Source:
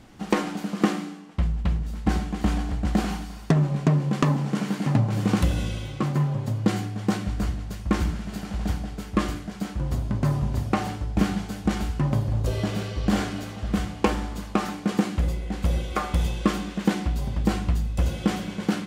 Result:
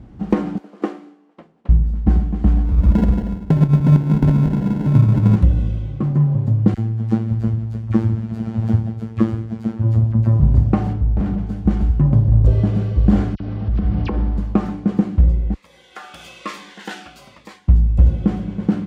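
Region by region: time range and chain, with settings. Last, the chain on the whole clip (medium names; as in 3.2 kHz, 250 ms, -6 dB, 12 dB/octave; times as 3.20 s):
0.58–1.69 s: high-pass 330 Hz 24 dB/octave + upward expansion, over -47 dBFS
2.65–5.36 s: backward echo that repeats 115 ms, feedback 52%, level -2 dB + sample-rate reducer 1.2 kHz
6.74–10.40 s: phase dispersion lows, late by 45 ms, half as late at 1.4 kHz + robot voice 112 Hz
10.93–11.47 s: treble shelf 4.3 kHz -8 dB + overload inside the chain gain 26.5 dB
13.35–14.38 s: steep low-pass 5.5 kHz 48 dB/octave + phase dispersion lows, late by 52 ms, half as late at 2.5 kHz + compression 12:1, threshold -30 dBFS
15.54–17.68 s: high-pass 1.5 kHz + Shepard-style phaser falling 1.1 Hz
whole clip: high-pass 55 Hz 12 dB/octave; tilt EQ -4.5 dB/octave; level rider; trim -1.5 dB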